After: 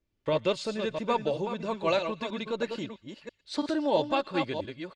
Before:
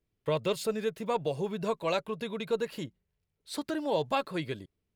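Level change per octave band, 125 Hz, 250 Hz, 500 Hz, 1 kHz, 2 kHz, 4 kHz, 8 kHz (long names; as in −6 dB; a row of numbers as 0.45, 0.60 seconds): −1.0, +3.5, +2.0, +3.0, +3.0, +3.5, −3.0 decibels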